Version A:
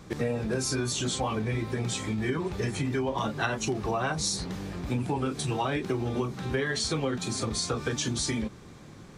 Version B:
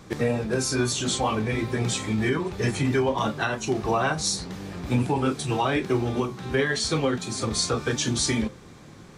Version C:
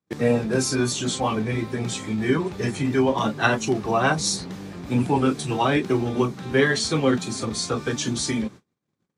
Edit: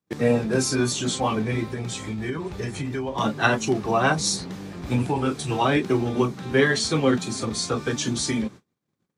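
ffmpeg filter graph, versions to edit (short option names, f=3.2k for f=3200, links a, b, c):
-filter_complex "[2:a]asplit=3[a][b][c];[a]atrim=end=1.692[d];[0:a]atrim=start=1.688:end=3.182[e];[b]atrim=start=3.178:end=4.822[f];[1:a]atrim=start=4.818:end=5.612[g];[c]atrim=start=5.608[h];[d][e]acrossfade=d=0.004:c1=hsin:c2=hsin[i];[i][f]acrossfade=d=0.004:c1=hsin:c2=hsin[j];[j][g]acrossfade=d=0.004:c1=hsin:c2=hsin[k];[k][h]acrossfade=d=0.004:c1=hsin:c2=hsin"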